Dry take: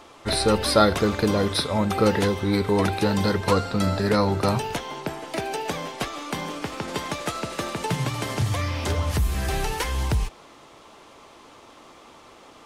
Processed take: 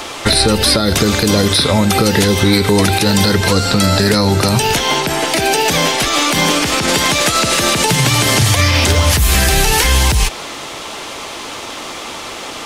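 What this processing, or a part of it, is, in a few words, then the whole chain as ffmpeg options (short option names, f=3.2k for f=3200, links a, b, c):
mastering chain: -filter_complex "[0:a]equalizer=f=1.1k:t=o:w=0.44:g=-3.5,acrossover=split=350|4200[a][b][c];[a]acompressor=threshold=-25dB:ratio=4[d];[b]acompressor=threshold=-33dB:ratio=4[e];[c]acompressor=threshold=-38dB:ratio=4[f];[d][e][f]amix=inputs=3:normalize=0,acompressor=threshold=-28dB:ratio=2.5,tiltshelf=f=1.3k:g=-4.5,alimiter=level_in=23.5dB:limit=-1dB:release=50:level=0:latency=1,volume=-1dB"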